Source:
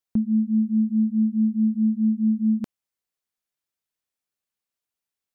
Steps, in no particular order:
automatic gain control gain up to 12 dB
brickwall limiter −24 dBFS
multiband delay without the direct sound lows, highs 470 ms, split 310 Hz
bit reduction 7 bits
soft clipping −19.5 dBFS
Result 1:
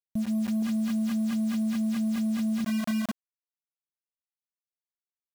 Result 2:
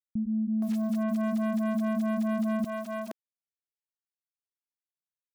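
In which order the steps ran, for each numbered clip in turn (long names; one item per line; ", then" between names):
multiband delay without the direct sound, then bit reduction, then soft clipping, then automatic gain control, then brickwall limiter
automatic gain control, then bit reduction, then soft clipping, then brickwall limiter, then multiband delay without the direct sound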